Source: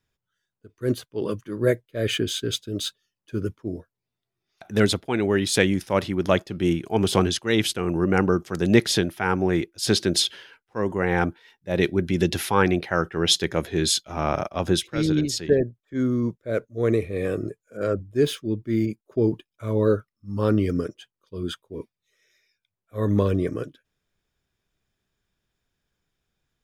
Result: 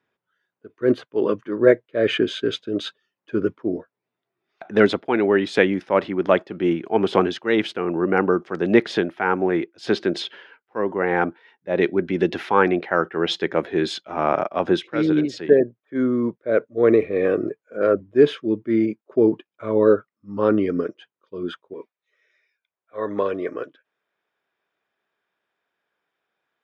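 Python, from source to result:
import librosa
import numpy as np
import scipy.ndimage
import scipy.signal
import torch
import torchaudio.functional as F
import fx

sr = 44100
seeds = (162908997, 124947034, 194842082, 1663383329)

y = fx.rider(x, sr, range_db=4, speed_s=2.0)
y = fx.bandpass_edges(y, sr, low_hz=fx.steps((0.0, 270.0), (21.74, 530.0)), high_hz=2100.0)
y = y * 10.0 ** (5.5 / 20.0)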